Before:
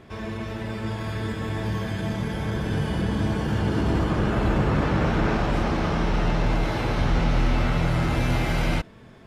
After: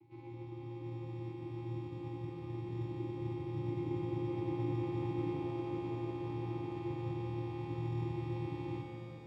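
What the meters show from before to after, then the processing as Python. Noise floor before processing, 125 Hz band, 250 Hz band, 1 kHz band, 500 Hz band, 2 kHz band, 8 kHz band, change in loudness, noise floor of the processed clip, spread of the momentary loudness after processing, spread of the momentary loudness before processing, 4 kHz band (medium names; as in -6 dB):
-47 dBFS, -14.0 dB, -13.0 dB, -17.5 dB, -12.0 dB, -25.5 dB, under -25 dB, -14.5 dB, -47 dBFS, 7 LU, 7 LU, -23.5 dB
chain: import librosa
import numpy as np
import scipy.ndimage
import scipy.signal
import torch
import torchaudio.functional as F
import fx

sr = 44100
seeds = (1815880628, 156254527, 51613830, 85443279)

p1 = fx.lower_of_two(x, sr, delay_ms=0.33)
p2 = scipy.signal.sosfilt(scipy.signal.butter(2, 4600.0, 'lowpass', fs=sr, output='sos'), p1)
p3 = fx.vocoder(p2, sr, bands=8, carrier='square', carrier_hz=117.0)
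p4 = fx.high_shelf(p3, sr, hz=2900.0, db=8.0)
p5 = fx.sample_hold(p4, sr, seeds[0], rate_hz=1800.0, jitter_pct=0)
p6 = p4 + (p5 * 10.0 ** (-9.0 / 20.0))
p7 = fx.vowel_filter(p6, sr, vowel='u')
p8 = fx.doubler(p7, sr, ms=21.0, db=-11.0)
p9 = p8 + fx.echo_single(p8, sr, ms=120, db=-12.5, dry=0)
p10 = fx.rev_shimmer(p9, sr, seeds[1], rt60_s=3.5, semitones=7, shimmer_db=-8, drr_db=4.0)
y = p10 * 10.0 ** (5.5 / 20.0)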